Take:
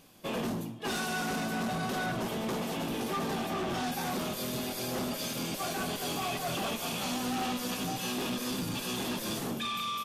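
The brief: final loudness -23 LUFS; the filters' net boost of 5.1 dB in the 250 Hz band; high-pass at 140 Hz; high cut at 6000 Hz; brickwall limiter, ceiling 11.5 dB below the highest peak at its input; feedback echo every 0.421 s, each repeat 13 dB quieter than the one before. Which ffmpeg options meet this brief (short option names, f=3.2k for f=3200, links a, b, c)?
-af "highpass=140,lowpass=6k,equalizer=f=250:t=o:g=6.5,alimiter=level_in=8dB:limit=-24dB:level=0:latency=1,volume=-8dB,aecho=1:1:421|842|1263:0.224|0.0493|0.0108,volume=15.5dB"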